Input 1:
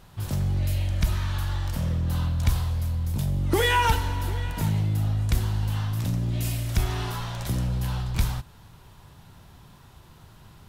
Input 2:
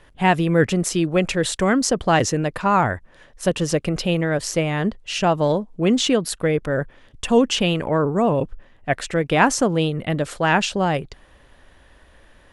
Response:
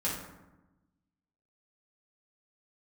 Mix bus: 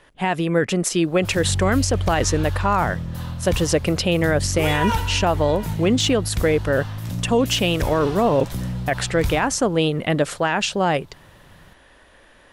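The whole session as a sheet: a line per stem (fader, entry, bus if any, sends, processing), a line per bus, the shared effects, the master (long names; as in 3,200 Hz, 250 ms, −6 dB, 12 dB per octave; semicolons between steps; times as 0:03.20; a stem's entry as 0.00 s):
−2.0 dB, 1.05 s, send −16.5 dB, no processing
+2.5 dB, 0.00 s, no send, low-shelf EQ 140 Hz −10 dB; speech leveller 0.5 s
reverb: on, RT60 1.0 s, pre-delay 3 ms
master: brickwall limiter −9 dBFS, peak gain reduction 10 dB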